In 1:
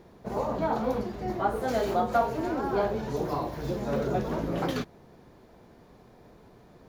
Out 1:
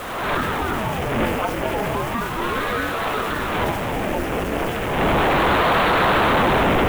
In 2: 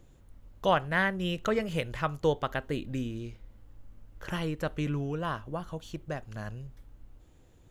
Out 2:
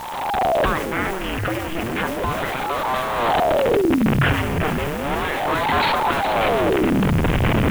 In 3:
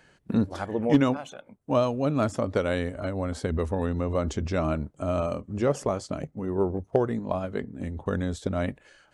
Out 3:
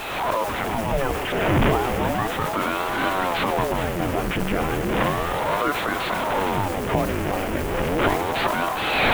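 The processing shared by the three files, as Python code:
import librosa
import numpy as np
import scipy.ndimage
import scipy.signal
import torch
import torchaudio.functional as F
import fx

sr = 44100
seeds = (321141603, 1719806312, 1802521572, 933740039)

p1 = fx.delta_mod(x, sr, bps=16000, step_db=-25.0)
p2 = fx.recorder_agc(p1, sr, target_db=-14.0, rise_db_per_s=37.0, max_gain_db=30)
p3 = fx.hpss(p2, sr, part='harmonic', gain_db=-5)
p4 = fx.quant_dither(p3, sr, seeds[0], bits=6, dither='triangular')
p5 = p3 + (p4 * librosa.db_to_amplitude(-3.5))
p6 = fx.transient(p5, sr, attack_db=-5, sustain_db=5)
p7 = p6 + fx.echo_single(p6, sr, ms=415, db=-10.5, dry=0)
y = fx.ring_lfo(p7, sr, carrier_hz=500.0, swing_pct=80, hz=0.34)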